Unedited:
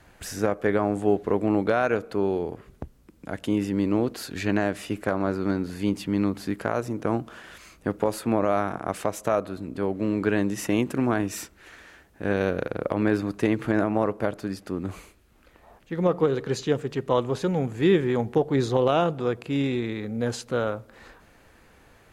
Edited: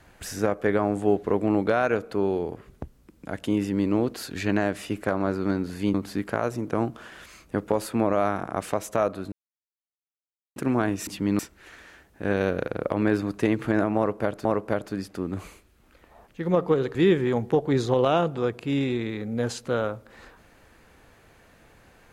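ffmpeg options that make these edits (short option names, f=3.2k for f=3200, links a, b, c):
-filter_complex "[0:a]asplit=8[a][b][c][d][e][f][g][h];[a]atrim=end=5.942[i];[b]atrim=start=6.258:end=9.64,asetpts=PTS-STARTPTS,afade=t=out:st=3.378:d=0.004:c=hsin[j];[c]atrim=start=9.64:end=10.88,asetpts=PTS-STARTPTS,volume=0[k];[d]atrim=start=10.88:end=11.392,asetpts=PTS-STARTPTS,afade=t=in:d=0.004:c=hsin[l];[e]atrim=start=5.938:end=6.262[m];[f]atrim=start=11.388:end=14.452[n];[g]atrim=start=13.968:end=16.472[o];[h]atrim=start=17.778[p];[j][k][l]concat=n=3:v=0:a=1[q];[i][q]acrossfade=d=0.004:c1=hsin:c2=hsin[r];[r][m]acrossfade=d=0.004:c1=hsin:c2=hsin[s];[s][n]acrossfade=d=0.004:c1=hsin:c2=hsin[t];[t][o]acrossfade=d=0.004:c1=hsin:c2=hsin[u];[u][p]acrossfade=d=0.004:c1=hsin:c2=hsin"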